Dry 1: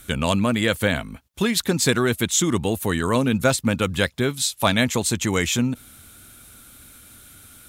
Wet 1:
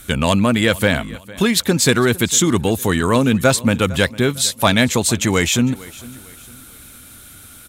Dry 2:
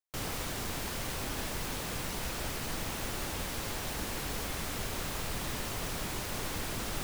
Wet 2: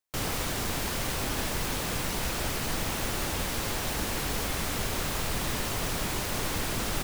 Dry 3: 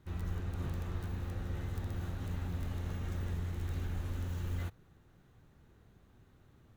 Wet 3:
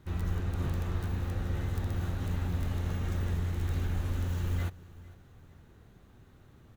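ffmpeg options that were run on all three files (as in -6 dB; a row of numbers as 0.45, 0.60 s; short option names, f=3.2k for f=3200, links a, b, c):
-filter_complex "[0:a]asplit=2[a][b];[b]aecho=0:1:454|908|1362:0.0891|0.0321|0.0116[c];[a][c]amix=inputs=2:normalize=0,acontrast=40"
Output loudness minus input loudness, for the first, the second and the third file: +5.0, +5.5, +6.0 LU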